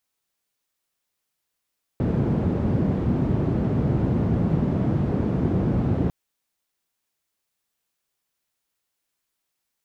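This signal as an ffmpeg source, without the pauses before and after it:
ffmpeg -f lavfi -i "anoisesrc=color=white:duration=4.1:sample_rate=44100:seed=1,highpass=frequency=88,lowpass=frequency=190,volume=5.5dB" out.wav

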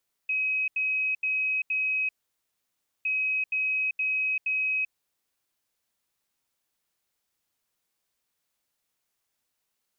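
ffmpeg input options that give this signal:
ffmpeg -f lavfi -i "aevalsrc='0.0631*sin(2*PI*2540*t)*clip(min(mod(mod(t,2.76),0.47),0.39-mod(mod(t,2.76),0.47))/0.005,0,1)*lt(mod(t,2.76),1.88)':duration=5.52:sample_rate=44100" out.wav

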